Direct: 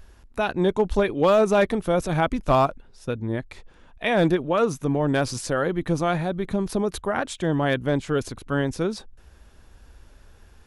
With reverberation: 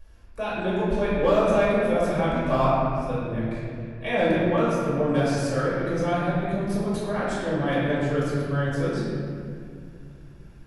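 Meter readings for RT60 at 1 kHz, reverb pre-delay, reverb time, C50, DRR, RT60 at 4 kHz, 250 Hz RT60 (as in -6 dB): 2.0 s, 4 ms, 2.3 s, -2.5 dB, -9.0 dB, 1.5 s, 3.3 s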